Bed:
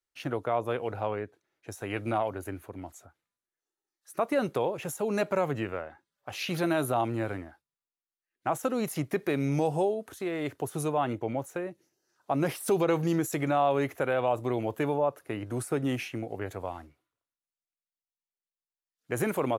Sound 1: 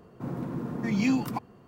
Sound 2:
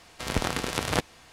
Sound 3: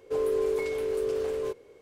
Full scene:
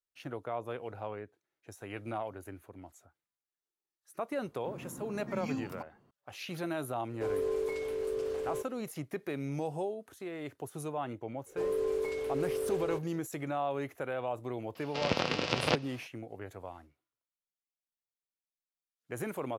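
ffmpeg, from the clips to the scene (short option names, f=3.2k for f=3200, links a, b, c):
-filter_complex "[3:a]asplit=2[a][b];[0:a]volume=-8.5dB[c];[2:a]highpass=130,equalizer=f=150:t=q:w=4:g=4,equalizer=f=530:t=q:w=4:g=7,equalizer=f=1.7k:t=q:w=4:g=-3,equalizer=f=2.7k:t=q:w=4:g=6,equalizer=f=5k:t=q:w=4:g=5,lowpass=f=5.3k:w=0.5412,lowpass=f=5.3k:w=1.3066[d];[1:a]atrim=end=1.67,asetpts=PTS-STARTPTS,volume=-12.5dB,afade=t=in:d=0.004:c=hsin,afade=t=out:st=1.666:d=0.004:c=hsin,adelay=4440[e];[a]atrim=end=1.81,asetpts=PTS-STARTPTS,volume=-5.5dB,afade=t=in:d=0.004:c=hsin,afade=t=out:st=1.806:d=0.004:c=hsin,adelay=7100[f];[b]atrim=end=1.81,asetpts=PTS-STARTPTS,volume=-5dB,afade=t=in:d=0.004:c=hsin,afade=t=out:st=1.806:d=0.004:c=hsin,adelay=505386S[g];[d]atrim=end=1.32,asetpts=PTS-STARTPTS,volume=-3.5dB,afade=t=in:d=0.004:c=hsin,afade=t=out:st=1.316:d=0.004:c=hsin,adelay=14750[h];[c][e][f][g][h]amix=inputs=5:normalize=0"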